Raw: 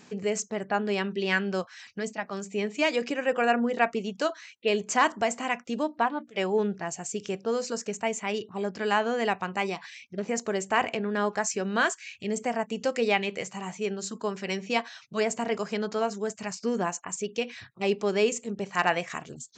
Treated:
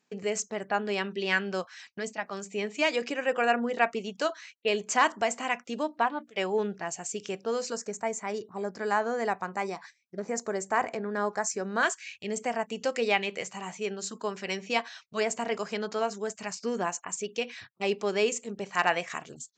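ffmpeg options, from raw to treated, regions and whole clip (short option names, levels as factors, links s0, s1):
-filter_complex "[0:a]asettb=1/sr,asplit=3[s0][s1][s2];[s0]atrim=end=7.764[s3];[s1]atrim=start=7.76:end=11.83,asetpts=PTS-STARTPTS,afade=t=in:d=0.004:c=qsin,afade=t=out:st=4.066:d=0.004:c=qsin,equalizer=f=3000:w=1.9:g=-14,bandreject=f=2700:w=18[s4];[s2]atrim=start=11.826[s5];[s3][s4]acrossfade=d=0.004:c1=hsin:c2=qsin[s6];[s6][s5]acrossfade=d=0.004:c1=qsin:c2=hsin,agate=range=0.0891:threshold=0.00501:ratio=16:detection=peak,lowshelf=f=270:g=-8"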